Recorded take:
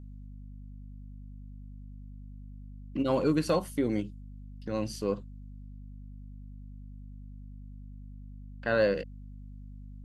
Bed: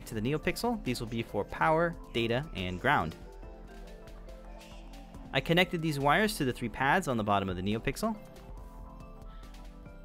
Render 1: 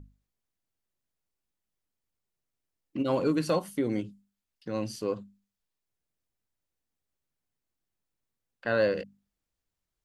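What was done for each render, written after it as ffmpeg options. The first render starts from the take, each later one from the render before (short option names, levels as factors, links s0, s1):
-af "bandreject=f=50:t=h:w=6,bandreject=f=100:t=h:w=6,bandreject=f=150:t=h:w=6,bandreject=f=200:t=h:w=6,bandreject=f=250:t=h:w=6"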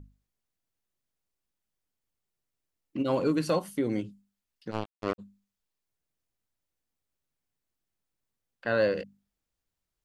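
-filter_complex "[0:a]asplit=3[s0][s1][s2];[s0]afade=t=out:st=4.7:d=0.02[s3];[s1]acrusher=bits=3:mix=0:aa=0.5,afade=t=in:st=4.7:d=0.02,afade=t=out:st=5.18:d=0.02[s4];[s2]afade=t=in:st=5.18:d=0.02[s5];[s3][s4][s5]amix=inputs=3:normalize=0"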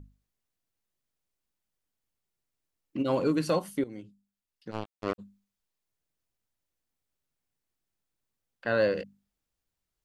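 -filter_complex "[0:a]asplit=2[s0][s1];[s0]atrim=end=3.84,asetpts=PTS-STARTPTS,afade=t=out:st=3.836:d=0.004:c=hsin:silence=0.16788[s2];[s1]atrim=start=3.84,asetpts=PTS-STARTPTS,afade=t=in:d=1.38:silence=0.16788[s3];[s2][s3]concat=n=2:v=0:a=1"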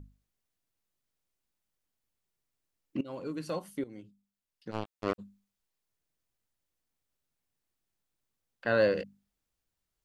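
-filter_complex "[0:a]asplit=2[s0][s1];[s0]atrim=end=3.01,asetpts=PTS-STARTPTS,afade=t=out:st=3.006:d=0.004:c=hsin:silence=0.133352[s2];[s1]atrim=start=3.01,asetpts=PTS-STARTPTS,afade=t=in:d=1.81:silence=0.133352[s3];[s2][s3]concat=n=2:v=0:a=1"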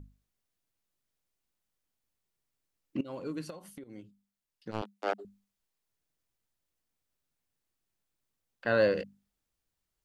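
-filter_complex "[0:a]asplit=3[s0][s1][s2];[s0]afade=t=out:st=3.49:d=0.02[s3];[s1]acompressor=threshold=0.00794:ratio=10:attack=3.2:release=140:knee=1:detection=peak,afade=t=in:st=3.49:d=0.02,afade=t=out:st=3.91:d=0.02[s4];[s2]afade=t=in:st=3.91:d=0.02[s5];[s3][s4][s5]amix=inputs=3:normalize=0,asettb=1/sr,asplit=3[s6][s7][s8];[s6]atrim=end=4.824[s9];[s7]atrim=start=4.82:end=5.25,asetpts=PTS-STARTPTS,afade=t=in:d=0.004:c=qsin,afade=t=out:st=0.426:d=0.004:c=qsin,afreqshift=200[s10];[s8]atrim=start=5.246[s11];[s9][s10]acrossfade=d=0.004:c1=hsin:c2=qsin[s12];[s12][s11]acrossfade=d=0.004:c1=qsin:c2=hsin"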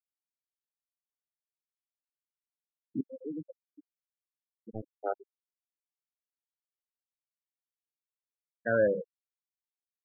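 -af "afftfilt=real='re*gte(hypot(re,im),0.0708)':imag='im*gte(hypot(re,im),0.0708)':win_size=1024:overlap=0.75"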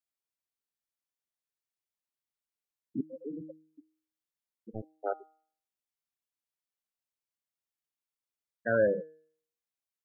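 -af "bandreject=f=156.9:t=h:w=4,bandreject=f=313.8:t=h:w=4,bandreject=f=470.7:t=h:w=4,bandreject=f=627.6:t=h:w=4,bandreject=f=784.5:t=h:w=4,bandreject=f=941.4:t=h:w=4,bandreject=f=1098.3:t=h:w=4,bandreject=f=1255.2:t=h:w=4,bandreject=f=1412.1:t=h:w=4,bandreject=f=1569:t=h:w=4,bandreject=f=1725.9:t=h:w=4,bandreject=f=1882.8:t=h:w=4,bandreject=f=2039.7:t=h:w=4,bandreject=f=2196.6:t=h:w=4,bandreject=f=2353.5:t=h:w=4,bandreject=f=2510.4:t=h:w=4,bandreject=f=2667.3:t=h:w=4,bandreject=f=2824.2:t=h:w=4,bandreject=f=2981.1:t=h:w=4,bandreject=f=3138:t=h:w=4,bandreject=f=3294.9:t=h:w=4,bandreject=f=3451.8:t=h:w=4,bandreject=f=3608.7:t=h:w=4,bandreject=f=3765.6:t=h:w=4,bandreject=f=3922.5:t=h:w=4,bandreject=f=4079.4:t=h:w=4,bandreject=f=4236.3:t=h:w=4,bandreject=f=4393.2:t=h:w=4,bandreject=f=4550.1:t=h:w=4,bandreject=f=4707:t=h:w=4,bandreject=f=4863.9:t=h:w=4,bandreject=f=5020.8:t=h:w=4"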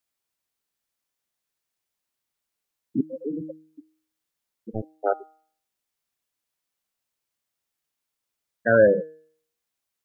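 -af "volume=2.99"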